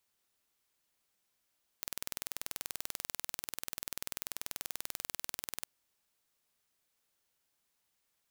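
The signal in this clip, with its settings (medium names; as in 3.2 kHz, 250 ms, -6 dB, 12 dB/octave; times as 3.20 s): pulse train 20.5 per s, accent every 0, -10 dBFS 3.83 s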